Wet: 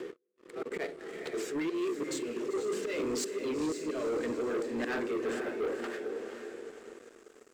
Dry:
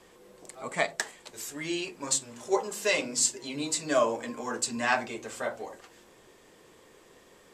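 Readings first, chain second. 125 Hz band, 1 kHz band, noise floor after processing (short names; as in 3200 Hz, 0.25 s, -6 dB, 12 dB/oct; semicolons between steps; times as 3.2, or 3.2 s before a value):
-4.5 dB, -9.5 dB, -62 dBFS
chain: auto swell 0.23 s; in parallel at 0 dB: upward compressor, threshold -37 dBFS; on the sum: HPF 82 Hz; low shelf 390 Hz -12 dB; gate with hold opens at -35 dBFS; sample leveller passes 2; band-pass sweep 400 Hz -> 6900 Hz, 5.73–6.26; band shelf 780 Hz -13 dB 1.2 oct; reverse; compressor 8:1, threshold -39 dBFS, peak gain reduction 12 dB; reverse; diffused feedback echo 0.487 s, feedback 47%, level -8 dB; sample leveller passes 3; gain +2.5 dB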